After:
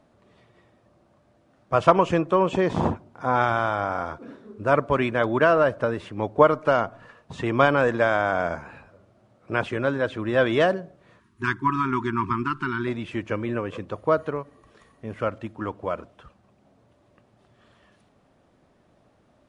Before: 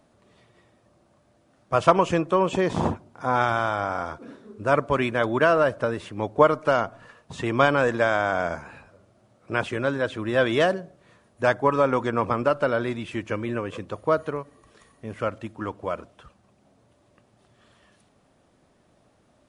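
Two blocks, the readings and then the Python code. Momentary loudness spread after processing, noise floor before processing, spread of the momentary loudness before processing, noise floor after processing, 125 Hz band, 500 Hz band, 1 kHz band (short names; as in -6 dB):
13 LU, -63 dBFS, 13 LU, -62 dBFS, +1.0 dB, 0.0 dB, +0.5 dB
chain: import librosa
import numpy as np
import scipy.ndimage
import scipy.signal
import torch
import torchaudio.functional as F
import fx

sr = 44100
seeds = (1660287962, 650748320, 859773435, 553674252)

y = fx.lowpass(x, sr, hz=3400.0, slope=6)
y = fx.spec_erase(y, sr, start_s=11.2, length_s=1.67, low_hz=400.0, high_hz=890.0)
y = y * 10.0 ** (1.0 / 20.0)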